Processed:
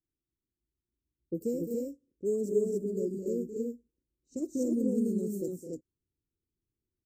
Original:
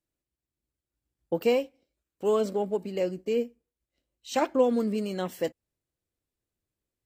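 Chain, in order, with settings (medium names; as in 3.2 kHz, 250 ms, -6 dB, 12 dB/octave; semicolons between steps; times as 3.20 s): elliptic band-stop 390–6800 Hz, stop band 40 dB; loudspeakers at several distances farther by 73 m -10 dB, 86 m -8 dB, 98 m -2 dB; level-controlled noise filter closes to 1.8 kHz, open at -29.5 dBFS; trim -2 dB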